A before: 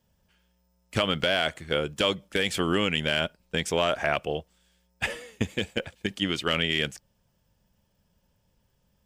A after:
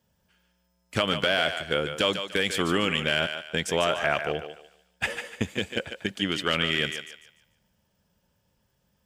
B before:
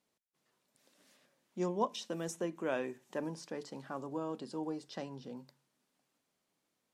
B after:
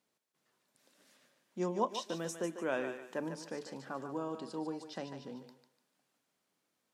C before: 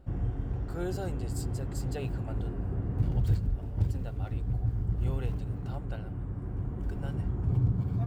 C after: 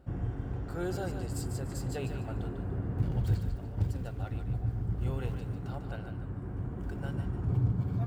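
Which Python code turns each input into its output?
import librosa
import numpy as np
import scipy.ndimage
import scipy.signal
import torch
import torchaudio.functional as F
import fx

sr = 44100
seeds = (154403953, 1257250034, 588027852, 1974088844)

y = fx.highpass(x, sr, hz=77.0, slope=6)
y = fx.peak_eq(y, sr, hz=1500.0, db=2.5, octaves=0.42)
y = fx.echo_thinned(y, sr, ms=147, feedback_pct=33, hz=460.0, wet_db=-7.5)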